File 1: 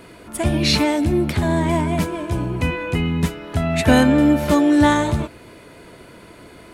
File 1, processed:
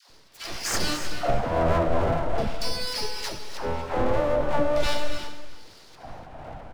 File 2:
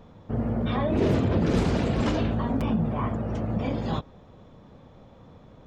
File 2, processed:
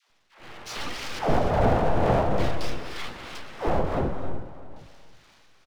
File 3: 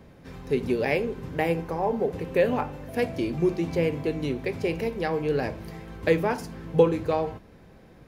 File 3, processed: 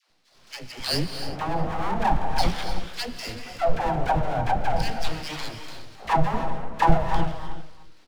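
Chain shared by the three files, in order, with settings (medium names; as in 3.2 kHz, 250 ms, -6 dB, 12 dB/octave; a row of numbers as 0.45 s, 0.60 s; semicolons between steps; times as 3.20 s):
peaking EQ 110 Hz +7 dB 0.38 oct; band-stop 520 Hz, Q 12; de-hum 88.03 Hz, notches 15; level rider gain up to 11 dB; LFO band-pass square 0.42 Hz 370–2500 Hz; full-wave rectifier; phase dispersion lows, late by 103 ms, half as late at 550 Hz; tremolo triangle 2.5 Hz, depth 50%; echo from a far wall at 64 m, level -15 dB; gated-style reverb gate 330 ms rising, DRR 7.5 dB; normalise loudness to -27 LUFS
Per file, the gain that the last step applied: +3.5 dB, +7.0 dB, +4.5 dB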